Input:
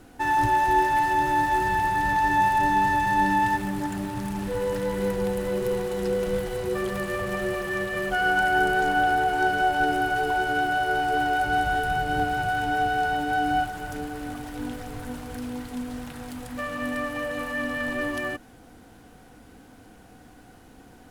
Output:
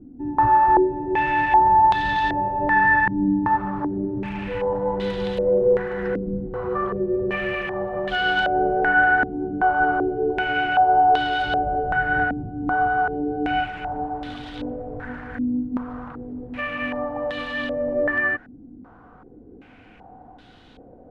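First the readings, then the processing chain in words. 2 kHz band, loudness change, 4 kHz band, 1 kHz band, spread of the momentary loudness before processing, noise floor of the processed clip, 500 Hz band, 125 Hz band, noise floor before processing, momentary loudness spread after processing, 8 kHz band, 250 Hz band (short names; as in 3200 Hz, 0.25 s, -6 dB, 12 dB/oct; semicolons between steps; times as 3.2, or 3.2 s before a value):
+3.0 dB, +3.5 dB, +2.0 dB, +3.0 dB, 13 LU, -48 dBFS, +4.5 dB, +1.0 dB, -50 dBFS, 13 LU, under -15 dB, +4.0 dB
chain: stepped low-pass 2.6 Hz 270–3600 Hz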